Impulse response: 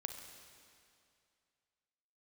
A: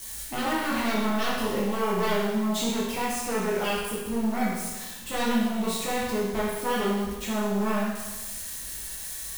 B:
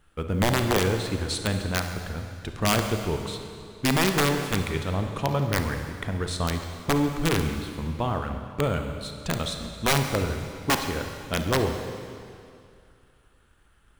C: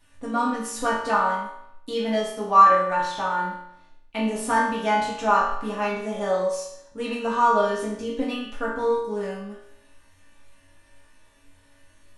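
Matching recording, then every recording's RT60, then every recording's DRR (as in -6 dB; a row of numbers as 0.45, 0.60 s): B; 1.2, 2.4, 0.75 s; -7.5, 5.0, -8.0 dB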